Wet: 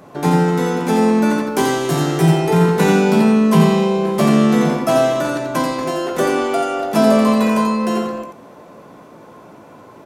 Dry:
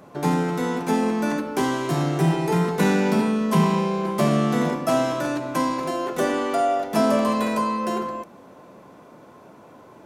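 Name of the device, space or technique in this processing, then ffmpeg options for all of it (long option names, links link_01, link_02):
slapback doubling: -filter_complex "[0:a]asettb=1/sr,asplit=3[link_01][link_02][link_03];[link_01]atrim=end=1.474[link_04];[link_02]atrim=start=1.47:end=2.31,asetpts=PTS-STARTPTS,afade=type=in:duration=0.004:curve=qsin,afade=type=out:start_time=0.836:duration=0.004:curve=qsin,highshelf=frequency=5100:gain=5[link_05];[link_03]atrim=start=2.306[link_06];[link_04][link_05]acrossfade=duration=0.004:curve1=hsin:curve2=qsin[link_07];[link_07][link_06]acrossfade=duration=0.004:curve1=qsin:curve2=hsin,asplit=3[link_08][link_09][link_10];[link_09]adelay=18,volume=-9dB[link_11];[link_10]adelay=87,volume=-5.5dB[link_12];[link_08][link_11][link_12]amix=inputs=3:normalize=0,volume=4.5dB"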